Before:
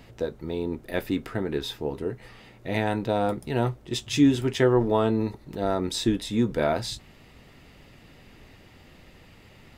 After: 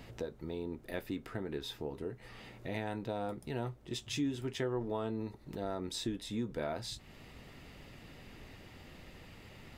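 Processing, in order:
downward compressor 2 to 1, threshold −42 dBFS, peak gain reduction 15 dB
level −1.5 dB

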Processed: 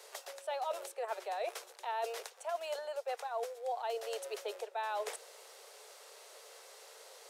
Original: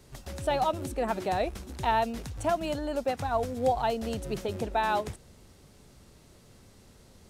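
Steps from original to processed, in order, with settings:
Butterworth high-pass 430 Hz 72 dB per octave
reversed playback
downward compressor 4 to 1, threshold −45 dBFS, peak gain reduction 20 dB
reversed playback
level +6.5 dB
Opus 128 kbit/s 48,000 Hz

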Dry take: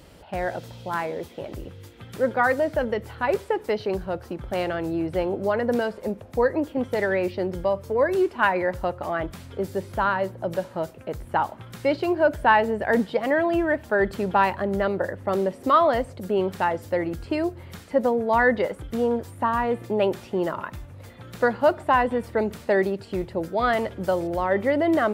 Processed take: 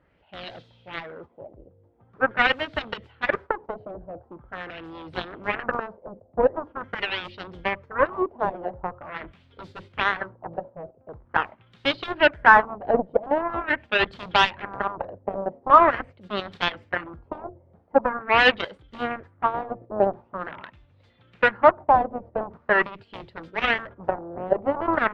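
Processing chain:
noise gate −33 dBFS, range −8 dB
harmonic generator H 7 −14 dB, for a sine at −6.5 dBFS
auto-filter low-pass sine 0.44 Hz 620–3,800 Hz

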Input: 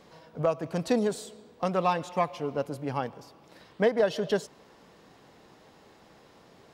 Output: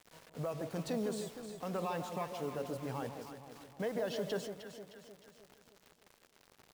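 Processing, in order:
brickwall limiter −22.5 dBFS, peak gain reduction 8 dB
bit-depth reduction 8 bits, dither none
on a send: delay that swaps between a low-pass and a high-pass 154 ms, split 880 Hz, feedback 71%, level −6 dB
on the sum: level −6.5 dB

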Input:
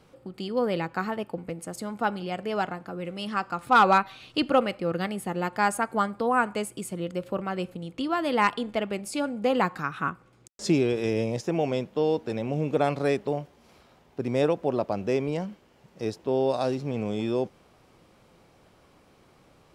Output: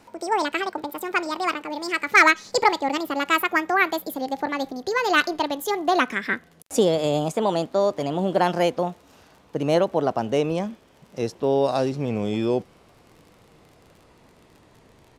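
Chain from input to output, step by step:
gliding playback speed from 180% → 80%
surface crackle 46 per second −45 dBFS
downsampling to 32,000 Hz
level +4 dB

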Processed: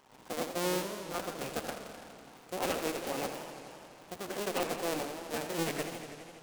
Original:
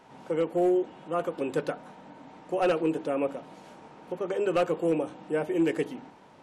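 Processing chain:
sub-harmonics by changed cycles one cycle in 2, muted
high-shelf EQ 2,900 Hz +10 dB
feedback echo with a swinging delay time 83 ms, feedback 80%, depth 181 cents, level −9 dB
level −7 dB

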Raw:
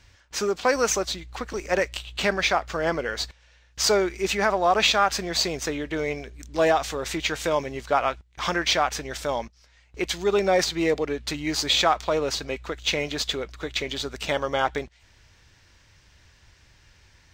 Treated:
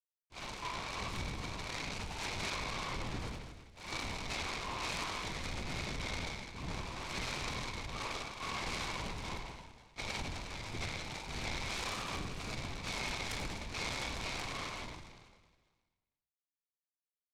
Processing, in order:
spectrum averaged block by block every 50 ms
downward compressor 6 to 1, threshold −27 dBFS, peak gain reduction 11.5 dB
brick-wall band-stop 180–980 Hz
bit-depth reduction 6 bits, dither none
transient designer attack −3 dB, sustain +7 dB
formant filter u
flutter between parallel walls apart 5.5 metres, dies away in 1.5 s
linear-prediction vocoder at 8 kHz whisper
brickwall limiter −38.5 dBFS, peak gain reduction 8.5 dB
short delay modulated by noise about 1,500 Hz, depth 0.077 ms
level +9 dB

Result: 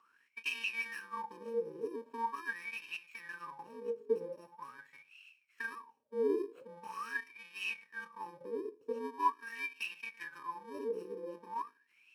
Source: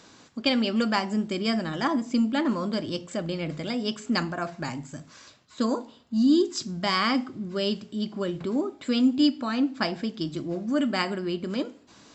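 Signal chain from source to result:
samples in bit-reversed order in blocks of 64 samples
LFO wah 0.43 Hz 440–2,700 Hz, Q 18
0:09.20–0:11.13: one half of a high-frequency compander encoder only
level +8.5 dB

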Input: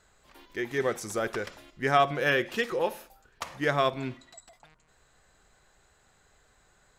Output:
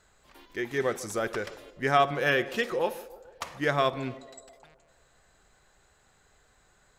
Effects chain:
feedback echo with a band-pass in the loop 147 ms, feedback 62%, band-pass 560 Hz, level −16 dB

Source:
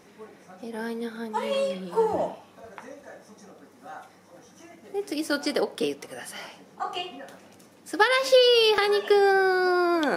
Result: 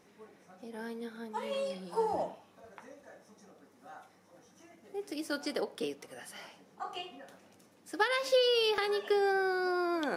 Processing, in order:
0:01.66–0:02.23: thirty-one-band graphic EQ 800 Hz +7 dB, 5,000 Hz +10 dB, 10,000 Hz +8 dB
level −9 dB

